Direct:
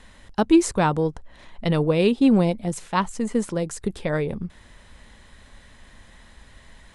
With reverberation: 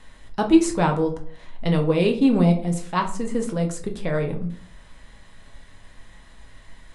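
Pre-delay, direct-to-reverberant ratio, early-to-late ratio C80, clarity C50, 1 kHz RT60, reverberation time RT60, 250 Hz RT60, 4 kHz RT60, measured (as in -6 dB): 6 ms, 2.5 dB, 15.0 dB, 11.0 dB, 0.45 s, 0.50 s, 0.60 s, 0.30 s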